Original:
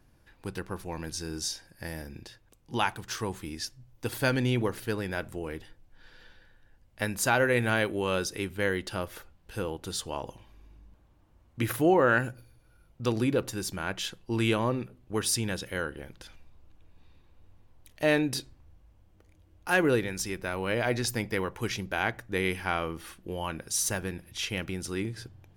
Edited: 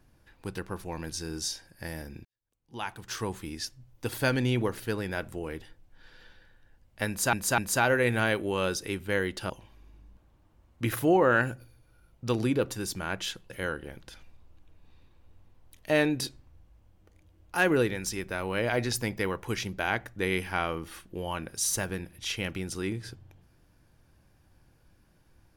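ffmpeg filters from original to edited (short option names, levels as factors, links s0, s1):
-filter_complex "[0:a]asplit=6[s0][s1][s2][s3][s4][s5];[s0]atrim=end=2.25,asetpts=PTS-STARTPTS,afade=t=out:st=2.246:d=0.004:c=hsin[s6];[s1]atrim=start=2.25:end=7.332,asetpts=PTS-STARTPTS,afade=t=in:d=0.93:c=qua[s7];[s2]atrim=start=7.078:end=7.332[s8];[s3]atrim=start=7.078:end=9.002[s9];[s4]atrim=start=10.268:end=14.272[s10];[s5]atrim=start=15.628[s11];[s6][s7]concat=n=2:v=0:a=1[s12];[s12][s8]acrossfade=d=0.004:c1=hsin:c2=hsin[s13];[s13][s9]acrossfade=d=0.004:c1=hsin:c2=hsin[s14];[s14][s10]acrossfade=d=0.004:c1=hsin:c2=hsin[s15];[s15][s11]acrossfade=d=0.004:c1=hsin:c2=hsin"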